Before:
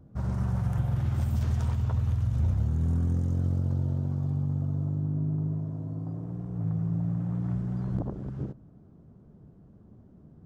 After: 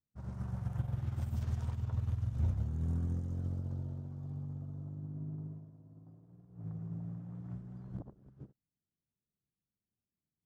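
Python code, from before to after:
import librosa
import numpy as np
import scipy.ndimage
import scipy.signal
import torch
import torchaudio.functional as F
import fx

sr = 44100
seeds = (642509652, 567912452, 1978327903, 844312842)

y = fx.upward_expand(x, sr, threshold_db=-48.0, expansion=2.5)
y = F.gain(torch.from_numpy(y), -4.5).numpy()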